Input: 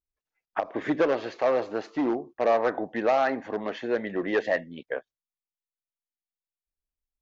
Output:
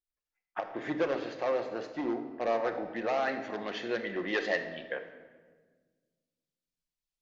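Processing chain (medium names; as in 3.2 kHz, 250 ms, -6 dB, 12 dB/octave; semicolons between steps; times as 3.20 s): peaking EQ 4.4 kHz +3.5 dB 2.6 oct, from 3.28 s +11.5 dB; reverberation RT60 1.5 s, pre-delay 6 ms, DRR 5.5 dB; trim -8 dB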